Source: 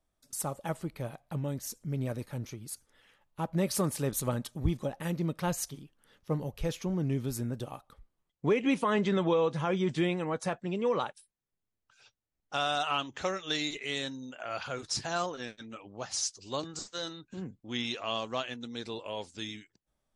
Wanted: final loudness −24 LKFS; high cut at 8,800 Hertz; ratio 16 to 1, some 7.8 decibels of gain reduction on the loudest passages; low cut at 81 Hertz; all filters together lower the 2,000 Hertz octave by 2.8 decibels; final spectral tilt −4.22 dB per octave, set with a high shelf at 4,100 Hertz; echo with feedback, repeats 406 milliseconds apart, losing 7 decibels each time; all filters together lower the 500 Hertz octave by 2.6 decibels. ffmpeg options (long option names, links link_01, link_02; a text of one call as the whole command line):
ffmpeg -i in.wav -af "highpass=81,lowpass=8800,equalizer=frequency=500:width_type=o:gain=-3,equalizer=frequency=2000:width_type=o:gain=-4.5,highshelf=frequency=4100:gain=3,acompressor=threshold=-31dB:ratio=16,aecho=1:1:406|812|1218|1624|2030:0.447|0.201|0.0905|0.0407|0.0183,volume=13.5dB" out.wav